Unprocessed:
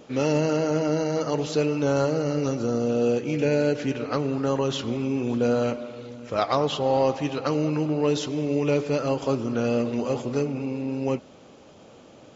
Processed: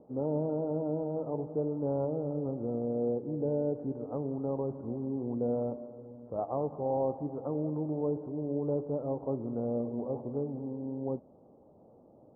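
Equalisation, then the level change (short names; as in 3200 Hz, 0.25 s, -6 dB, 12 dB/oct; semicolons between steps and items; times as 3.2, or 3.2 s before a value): steep low-pass 910 Hz 36 dB/oct; -8.5 dB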